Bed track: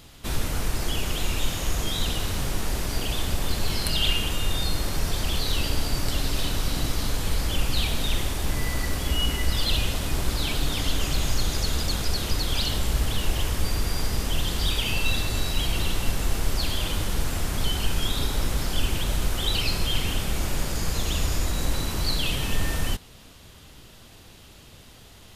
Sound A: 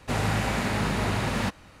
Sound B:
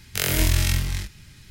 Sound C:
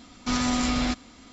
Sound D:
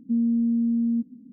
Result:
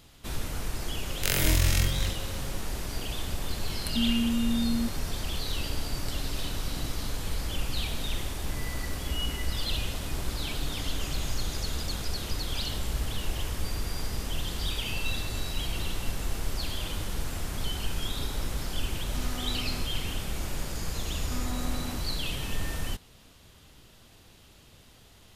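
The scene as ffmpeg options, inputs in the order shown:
ffmpeg -i bed.wav -i cue0.wav -i cue1.wav -i cue2.wav -i cue3.wav -filter_complex "[3:a]asplit=2[link_01][link_02];[0:a]volume=-6.5dB[link_03];[2:a]aeval=exprs='val(0)+0.00708*sin(2*PI*540*n/s)':channel_layout=same[link_04];[link_01]asoftclip=type=tanh:threshold=-21.5dB[link_05];[link_02]lowpass=1600[link_06];[link_04]atrim=end=1.5,asetpts=PTS-STARTPTS,volume=-3.5dB,afade=type=in:duration=0.004:curve=hsin,afade=type=out:start_time=1.496:duration=0.004:curve=hsin,adelay=1080[link_07];[4:a]atrim=end=1.32,asetpts=PTS-STARTPTS,volume=-5dB,afade=type=in:duration=0.004:curve=hsin,afade=type=out:start_time=1.316:duration=0.004:curve=hsin,adelay=3860[link_08];[link_05]atrim=end=1.32,asetpts=PTS-STARTPTS,volume=-12.5dB,afade=type=in:duration=0.004:curve=hsin,afade=type=out:start_time=1.316:duration=0.004:curve=hsin,adelay=18880[link_09];[link_06]atrim=end=1.32,asetpts=PTS-STARTPTS,volume=-12dB,afade=type=in:duration=0.004:curve=hsin,afade=type=out:start_time=1.316:duration=0.004:curve=hsin,adelay=21040[link_10];[link_03][link_07][link_08][link_09][link_10]amix=inputs=5:normalize=0" out.wav

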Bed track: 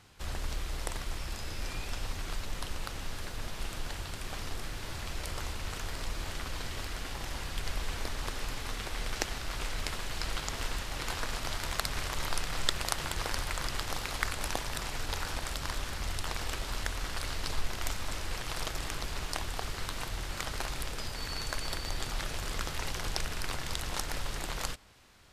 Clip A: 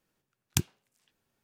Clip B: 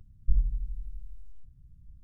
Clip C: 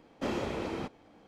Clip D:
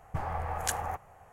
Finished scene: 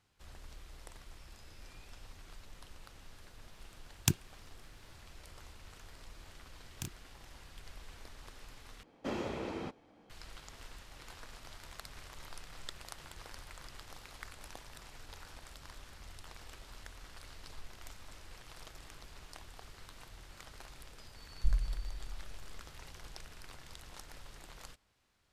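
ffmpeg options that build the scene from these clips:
ffmpeg -i bed.wav -i cue0.wav -i cue1.wav -i cue2.wav -filter_complex "[1:a]asplit=2[link_01][link_02];[0:a]volume=-16dB[link_03];[link_02]asplit=2[link_04][link_05];[link_05]adelay=31,volume=-4dB[link_06];[link_04][link_06]amix=inputs=2:normalize=0[link_07];[link_03]asplit=2[link_08][link_09];[link_08]atrim=end=8.834[link_10];[3:a]atrim=end=1.27,asetpts=PTS-STARTPTS,volume=-4.5dB[link_11];[link_09]atrim=start=10.096[link_12];[link_01]atrim=end=1.43,asetpts=PTS-STARTPTS,volume=-1.5dB,afade=type=in:duration=0.004:curve=hsin,afade=type=out:start_time=1.426:duration=0.004:curve=hsin,adelay=3510[link_13];[link_07]atrim=end=1.43,asetpts=PTS-STARTPTS,volume=-16dB,afade=type=in:duration=0.004:curve=hsin,afade=type=out:start_time=1.426:duration=0.004:curve=hsin,adelay=6250[link_14];[2:a]atrim=end=2.03,asetpts=PTS-STARTPTS,volume=-5.5dB,afade=type=in:duration=0.004:curve=hsin,afade=type=out:start_time=2.026:duration=0.004:curve=hsin,adelay=933156S[link_15];[link_10][link_11]acrossfade=duration=0.004:curve1=hsin:curve2=hsin[link_16];[link_16][link_12]acrossfade=duration=0.004:curve1=hsin:curve2=hsin[link_17];[link_17][link_13][link_14][link_15]amix=inputs=4:normalize=0" out.wav

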